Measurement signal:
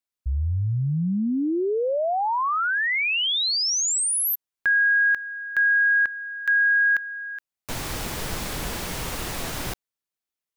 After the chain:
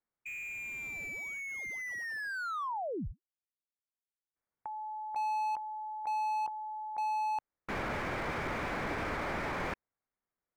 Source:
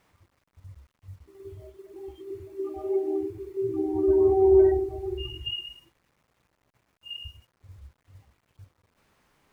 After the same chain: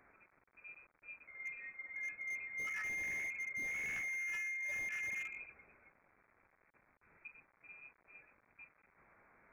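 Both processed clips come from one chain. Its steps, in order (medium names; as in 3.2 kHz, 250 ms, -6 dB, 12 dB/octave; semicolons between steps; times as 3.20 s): high-pass 410 Hz 6 dB/octave; peaking EQ 570 Hz -3.5 dB 1.9 oct; compressor with a negative ratio -33 dBFS, ratio -1; frequency inversion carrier 2.5 kHz; slew-rate limiter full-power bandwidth 23 Hz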